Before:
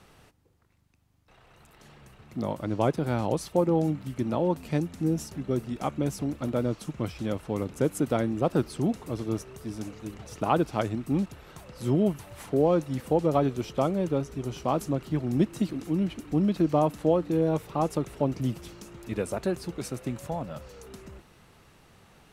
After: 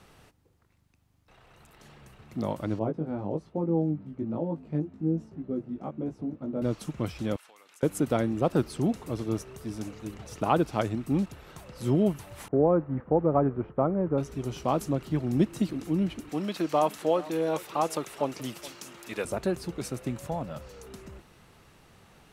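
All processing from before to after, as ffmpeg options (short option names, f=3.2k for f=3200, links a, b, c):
-filter_complex "[0:a]asettb=1/sr,asplit=3[a][b][c];[a]atrim=end=2.794[d];[b]atrim=start=2.79:end=6.62,asetpts=PTS-STARTPTS,afade=t=in:d=0.004:c=qsin,afade=t=out:st=3.826:d=0.004:c=qsin,bandpass=f=250:t=q:w=0.57,flanger=delay=18:depth=2.1:speed=1.2[e];[c]atrim=start=6.616[f];[d][e]acrossfade=d=0.004:c1=hsin:c2=qsin[g];[g][f]acrossfade=d=0.004:c1=qsin:c2=hsin,asettb=1/sr,asplit=3[h][i][j];[h]atrim=end=7.364[k];[i]atrim=start=7.36:end=7.83,asetpts=PTS-STARTPTS,afade=t=in:d=0.004:c=qsin,afade=t=out:st=0.466:d=0.004:c=qsin,highpass=1.4k,acompressor=threshold=-51dB:ratio=10:attack=3.2:release=140:knee=1:detection=peak[l];[j]atrim=start=7.826[m];[k][l]acrossfade=d=0.004:c1=hsin:c2=qsin[n];[n][m]acrossfade=d=0.004:c1=qsin:c2=hsin,asettb=1/sr,asplit=3[o][p][q];[o]atrim=end=12.484[r];[p]atrim=start=12.48:end=14.18,asetpts=PTS-STARTPTS,afade=t=in:d=0.004:c=qsin,afade=t=out:st=1.696:d=0.004:c=qsin,agate=range=-33dB:threshold=-39dB:ratio=3:release=100:detection=peak,lowpass=f=1.6k:w=0.5412,lowpass=f=1.6k:w=1.3066[s];[q]atrim=start=14.176[t];[r][s]acrossfade=d=0.004:c1=hsin:c2=qsin[u];[u][t]acrossfade=d=0.004:c1=qsin:c2=hsin,asettb=1/sr,asplit=3[v][w][x];[v]atrim=end=16.294[y];[w]atrim=start=16.29:end=19.25,asetpts=PTS-STARTPTS,afade=t=in:d=0.004:c=qsin,afade=t=out:st=2.956:d=0.004:c=qsin,highpass=f=1.1k:p=1,acontrast=51,aecho=1:1:424:0.119,atrim=end_sample=130536[z];[x]atrim=start=19.246[aa];[y][z]acrossfade=d=0.004:c1=hsin:c2=qsin[ab];[ab][aa]acrossfade=d=0.004:c1=qsin:c2=hsin"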